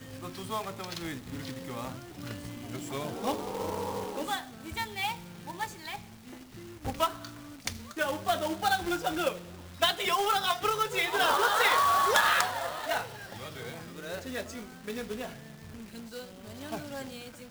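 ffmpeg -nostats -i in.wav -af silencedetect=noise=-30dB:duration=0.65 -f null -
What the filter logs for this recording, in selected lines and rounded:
silence_start: 5.96
silence_end: 6.86 | silence_duration: 0.90
silence_start: 13.01
silence_end: 14.11 | silence_duration: 1.09
silence_start: 15.24
silence_end: 16.72 | silence_duration: 1.48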